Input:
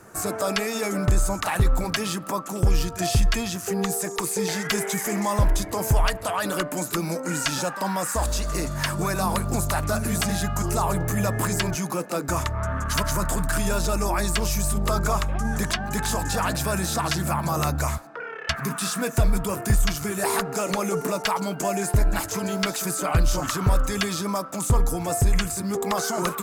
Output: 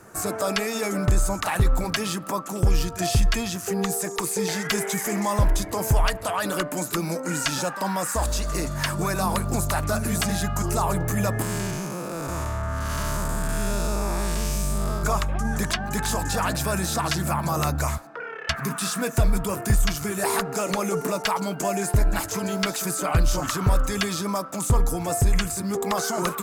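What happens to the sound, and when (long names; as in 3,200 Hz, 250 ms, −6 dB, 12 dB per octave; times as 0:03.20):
0:11.42–0:15.03: spectrum smeared in time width 251 ms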